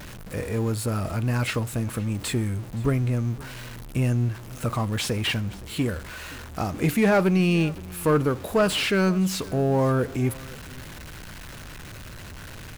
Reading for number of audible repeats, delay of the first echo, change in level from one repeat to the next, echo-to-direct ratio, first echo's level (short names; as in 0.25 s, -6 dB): 1, 0.519 s, no steady repeat, -21.5 dB, -21.5 dB